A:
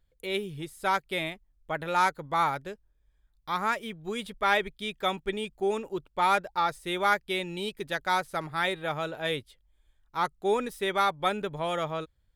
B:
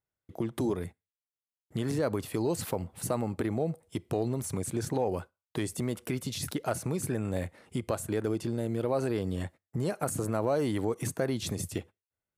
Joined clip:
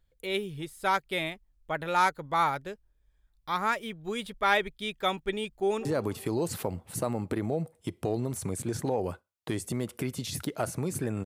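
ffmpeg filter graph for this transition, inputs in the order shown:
ffmpeg -i cue0.wav -i cue1.wav -filter_complex "[0:a]apad=whole_dur=11.25,atrim=end=11.25,atrim=end=5.852[link_01];[1:a]atrim=start=1.928:end=7.33[link_02];[link_01][link_02]acrossfade=duration=0.004:curve1=hsin:curve2=hsin,asplit=2[link_03][link_04];[link_04]afade=type=in:start_time=5.55:duration=0.01,afade=type=out:start_time=5.85:duration=0.01,aecho=0:1:190|380|570|760|950:0.149624|0.082293|0.0452611|0.0248936|0.0136915[link_05];[link_03][link_05]amix=inputs=2:normalize=0" out.wav

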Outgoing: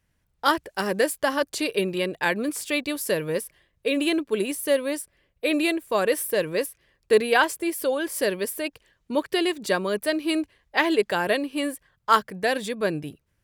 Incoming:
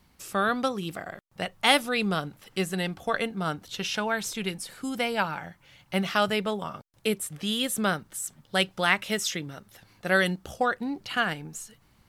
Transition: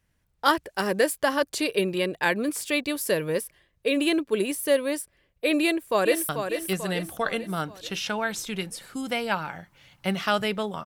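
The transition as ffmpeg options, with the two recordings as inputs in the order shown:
ffmpeg -i cue0.wav -i cue1.wav -filter_complex "[0:a]apad=whole_dur=10.85,atrim=end=10.85,atrim=end=6.292[link_01];[1:a]atrim=start=2.168:end=6.73[link_02];[link_01][link_02]acrossfade=duration=0.004:curve1=hsin:curve2=hsin,asplit=2[link_03][link_04];[link_04]afade=type=in:start_time=5.61:duration=0.01,afade=type=out:start_time=6.29:duration=0.01,aecho=0:1:440|880|1320|1760|2200|2640:0.446684|0.223342|0.111671|0.0558354|0.0279177|0.0139589[link_05];[link_03][link_05]amix=inputs=2:normalize=0" out.wav

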